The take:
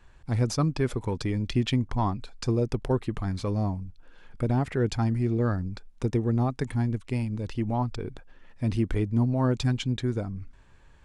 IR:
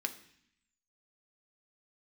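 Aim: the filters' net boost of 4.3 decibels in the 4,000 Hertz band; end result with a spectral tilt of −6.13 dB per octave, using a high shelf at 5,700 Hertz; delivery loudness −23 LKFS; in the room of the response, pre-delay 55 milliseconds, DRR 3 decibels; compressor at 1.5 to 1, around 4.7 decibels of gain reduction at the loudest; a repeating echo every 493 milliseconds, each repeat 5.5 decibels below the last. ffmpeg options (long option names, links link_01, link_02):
-filter_complex "[0:a]equalizer=frequency=4000:width_type=o:gain=7,highshelf=frequency=5700:gain=-4,acompressor=threshold=-33dB:ratio=1.5,aecho=1:1:493|986|1479|1972|2465|2958|3451:0.531|0.281|0.149|0.079|0.0419|0.0222|0.0118,asplit=2[link_01][link_02];[1:a]atrim=start_sample=2205,adelay=55[link_03];[link_02][link_03]afir=irnorm=-1:irlink=0,volume=-5dB[link_04];[link_01][link_04]amix=inputs=2:normalize=0,volume=7dB"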